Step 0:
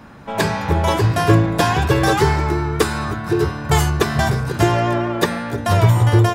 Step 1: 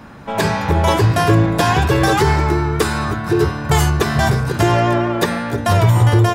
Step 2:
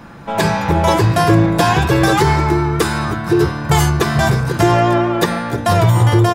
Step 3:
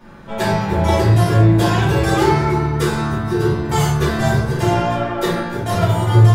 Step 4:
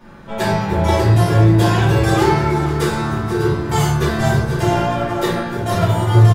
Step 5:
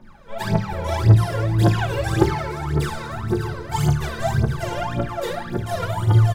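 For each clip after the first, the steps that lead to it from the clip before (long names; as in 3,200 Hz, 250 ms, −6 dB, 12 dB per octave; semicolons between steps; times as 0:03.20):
brickwall limiter −7.5 dBFS, peak gain reduction 4 dB; level +3 dB
comb filter 5.9 ms, depth 32%; level +1 dB
rectangular room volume 100 cubic metres, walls mixed, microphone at 2.6 metres; level −13.5 dB
repeating echo 486 ms, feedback 47%, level −13 dB
phase shifter 1.8 Hz, delay 2.2 ms, feedback 79%; level −11 dB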